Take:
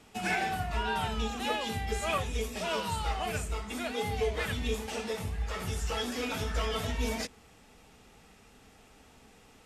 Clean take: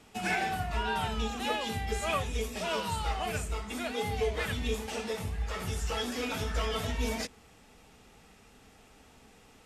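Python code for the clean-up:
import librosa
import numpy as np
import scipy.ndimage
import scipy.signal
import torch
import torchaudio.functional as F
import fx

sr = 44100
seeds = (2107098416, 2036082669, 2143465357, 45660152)

y = fx.fix_interpolate(x, sr, at_s=(2.18,), length_ms=2.4)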